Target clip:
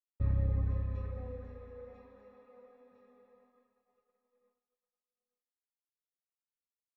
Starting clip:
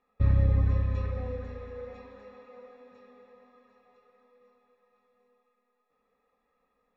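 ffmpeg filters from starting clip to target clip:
-af "highshelf=f=2.1k:g=-10,agate=range=-33dB:threshold=-57dB:ratio=3:detection=peak,volume=-7.5dB"

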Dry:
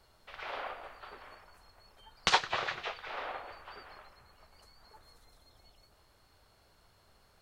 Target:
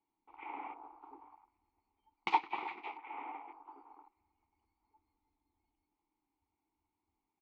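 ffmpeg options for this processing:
-filter_complex "[0:a]asettb=1/sr,asplit=3[a][b][c];[a]atrim=end=2.134[d];[b]atrim=start=2.13:end=4.13,asetpts=PTS-STARTPTS,afade=t=in:d=0.004:c=qsin,afade=t=out:st=1.996:d=0.004:c=qsin,equalizer=f=99:t=o:w=1.6:g=-13.5[e];[c]atrim=start=4.126[f];[d][e]acrossfade=d=0.004:c1=hsin:c2=qsin[g];[g][f]acrossfade=d=0.004:c1=qsin:c2=hsin,asplit=2[h][i];[i]adelay=310,lowpass=f=1.1k:p=1,volume=-15dB,asplit=2[j][k];[k]adelay=310,lowpass=f=1.1k:p=1,volume=0.53,asplit=2[l][m];[m]adelay=310,lowpass=f=1.1k:p=1,volume=0.53,asplit=2[n][o];[o]adelay=310,lowpass=f=1.1k:p=1,volume=0.53,asplit=2[p][q];[q]adelay=310,lowpass=f=1.1k:p=1,volume=0.53[r];[h][j][l][n][p][r]amix=inputs=6:normalize=0,afwtdn=0.00398,asplit=3[s][t][u];[s]bandpass=f=300:t=q:w=8,volume=0dB[v];[t]bandpass=f=870:t=q:w=8,volume=-6dB[w];[u]bandpass=f=2.24k:t=q:w=8,volume=-9dB[x];[v][w][x]amix=inputs=3:normalize=0,highshelf=f=3k:g=-10,bandreject=f=60:t=h:w=6,bandreject=f=120:t=h:w=6,volume=11dB"

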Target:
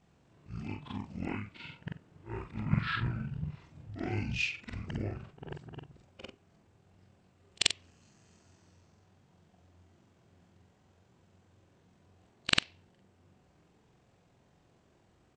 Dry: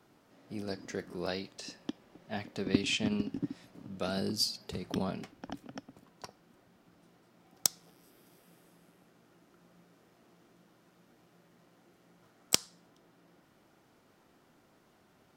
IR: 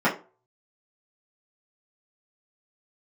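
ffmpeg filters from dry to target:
-af "afftfilt=real='re':imag='-im':win_size=4096:overlap=0.75,asetrate=23361,aresample=44100,atempo=1.88775,volume=4dB"

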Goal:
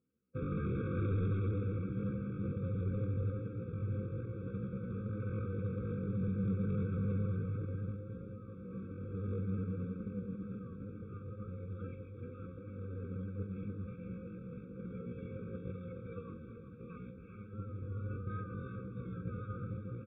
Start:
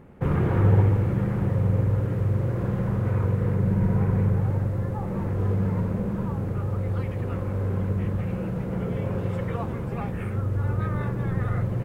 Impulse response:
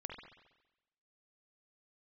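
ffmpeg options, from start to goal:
-filter_complex "[0:a]highpass=82,agate=range=-33dB:threshold=-18dB:ratio=3:detection=peak,aecho=1:1:3.9:0.34,asplit=2[a][b];[b]acompressor=threshold=-39dB:ratio=6,volume=2.5dB[c];[a][c]amix=inputs=2:normalize=0,atempo=0.59,aresample=8000,volume=22.5dB,asoftclip=hard,volume=-22.5dB,aresample=44100,aecho=1:1:388:0.266,afftfilt=real='re*eq(mod(floor(b*sr/1024/540),2),0)':imag='im*eq(mod(floor(b*sr/1024/540),2),0)':win_size=1024:overlap=0.75,volume=-8dB"

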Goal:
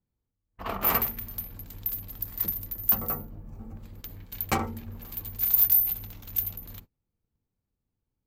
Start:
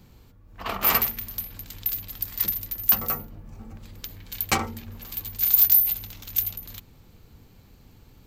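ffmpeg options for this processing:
-filter_complex "[0:a]asettb=1/sr,asplit=3[a][b][c];[a]atrim=end=1.514[d];[b]atrim=start=1.51:end=3.79,asetpts=PTS-STARTPTS,afade=t=in:d=0.004:c=qsin,afade=t=out:st=2.276:d=0.004:c=qsin,equalizer=f=2.4k:t=o:w=2.1:g=-3[e];[c]atrim=start=3.786[f];[d][e]acrossfade=d=0.004:c1=hsin:c2=qsin[g];[g][f]acrossfade=d=0.004:c1=qsin:c2=hsin,agate=range=-31dB:threshold=-43dB:ratio=16:detection=peak,equalizer=f=5.1k:t=o:w=2.9:g=-10"

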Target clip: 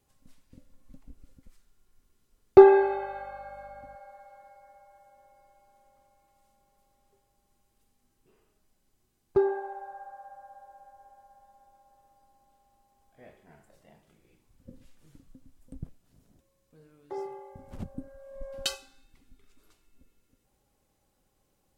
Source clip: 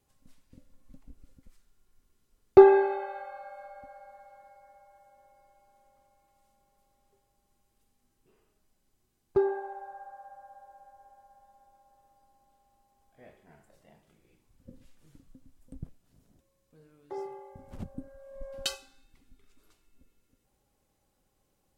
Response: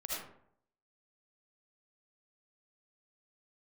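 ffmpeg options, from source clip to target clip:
-filter_complex "[0:a]asettb=1/sr,asplit=3[a][b][c];[a]atrim=end=2.794[d];[b]atrim=start=2.79:end=3.96,asetpts=PTS-STARTPTS,afade=t=in:d=0.004:c=qsin,afade=t=out:st=1.166:d=0.004:c=qsin,aeval=exprs='val(0)+0.00126*(sin(2*PI*50*n/s)+sin(2*PI*2*50*n/s)/2+sin(2*PI*3*50*n/s)/3+sin(2*PI*4*50*n/s)/4+sin(2*PI*5*50*n/s)/5)':c=same[e];[c]atrim=start=3.956[f];[d][e]acrossfade=d=0.004:c1=hsin:c2=qsin[g];[g][f]acrossfade=d=0.004:c1=qsin:c2=hsin,volume=1.5dB"

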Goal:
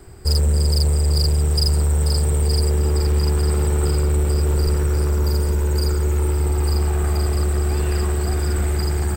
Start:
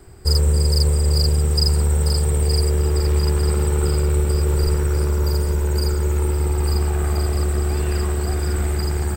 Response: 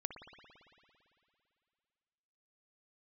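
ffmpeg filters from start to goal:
-af "asoftclip=type=tanh:threshold=-13.5dB,volume=2dB"

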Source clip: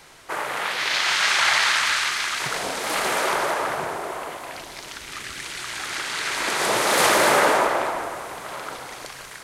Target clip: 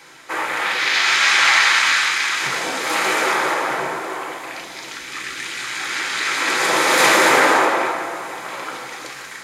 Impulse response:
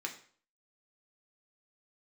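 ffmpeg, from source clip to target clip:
-filter_complex "[1:a]atrim=start_sample=2205[a];[0:a][a]afir=irnorm=-1:irlink=0,volume=4dB"

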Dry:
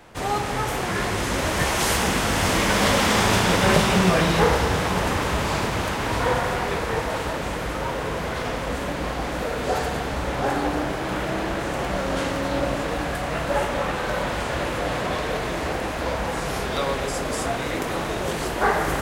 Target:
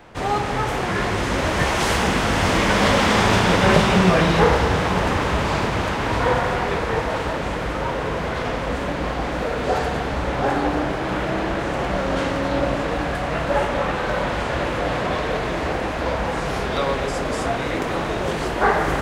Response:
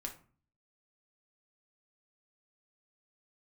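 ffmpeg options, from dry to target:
-af "equalizer=f=14k:w=0.4:g=-13,volume=3dB"

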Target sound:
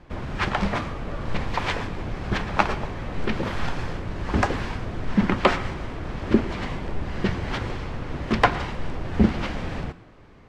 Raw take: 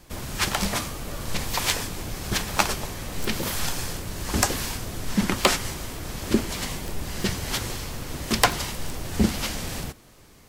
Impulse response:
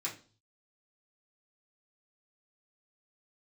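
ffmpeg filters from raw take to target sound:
-filter_complex "[0:a]lowpass=2.1k,asplit=2[a][b];[1:a]atrim=start_sample=2205,adelay=111[c];[b][c]afir=irnorm=-1:irlink=0,volume=-18.5dB[d];[a][d]amix=inputs=2:normalize=0,volume=3dB"

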